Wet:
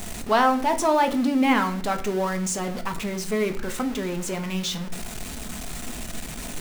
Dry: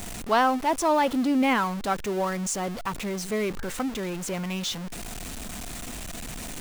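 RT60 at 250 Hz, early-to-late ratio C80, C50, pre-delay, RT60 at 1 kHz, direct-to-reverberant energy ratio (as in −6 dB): 0.90 s, 16.5 dB, 13.0 dB, 5 ms, 0.45 s, 6.0 dB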